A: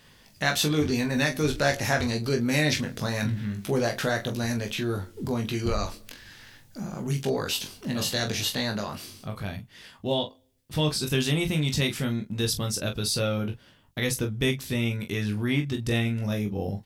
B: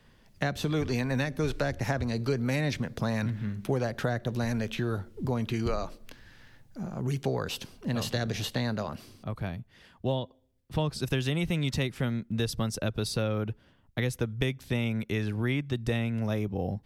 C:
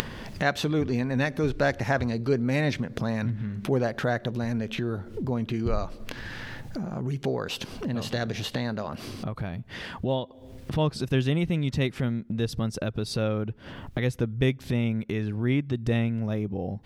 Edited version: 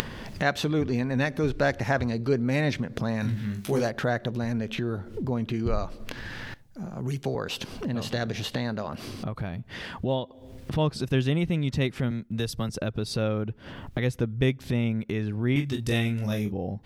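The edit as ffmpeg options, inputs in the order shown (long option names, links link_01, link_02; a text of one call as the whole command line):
ffmpeg -i take0.wav -i take1.wav -i take2.wav -filter_complex "[0:a]asplit=2[link_01][link_02];[1:a]asplit=2[link_03][link_04];[2:a]asplit=5[link_05][link_06][link_07][link_08][link_09];[link_05]atrim=end=3.3[link_10];[link_01]atrim=start=3.2:end=3.91[link_11];[link_06]atrim=start=3.81:end=6.542[link_12];[link_03]atrim=start=6.538:end=7.352[link_13];[link_07]atrim=start=7.348:end=12.112[link_14];[link_04]atrim=start=12.108:end=12.692[link_15];[link_08]atrim=start=12.688:end=15.562[link_16];[link_02]atrim=start=15.558:end=16.522[link_17];[link_09]atrim=start=16.518[link_18];[link_10][link_11]acrossfade=duration=0.1:curve1=tri:curve2=tri[link_19];[link_19][link_12]acrossfade=duration=0.1:curve1=tri:curve2=tri[link_20];[link_20][link_13]acrossfade=duration=0.004:curve1=hsin:curve2=hsin[link_21];[link_21][link_14]acrossfade=duration=0.004:curve1=hsin:curve2=hsin[link_22];[link_22][link_15]acrossfade=duration=0.004:curve1=hsin:curve2=hsin[link_23];[link_23][link_16]acrossfade=duration=0.004:curve1=hsin:curve2=hsin[link_24];[link_24][link_17]acrossfade=duration=0.004:curve1=hsin:curve2=hsin[link_25];[link_25][link_18]acrossfade=duration=0.004:curve1=hsin:curve2=hsin" out.wav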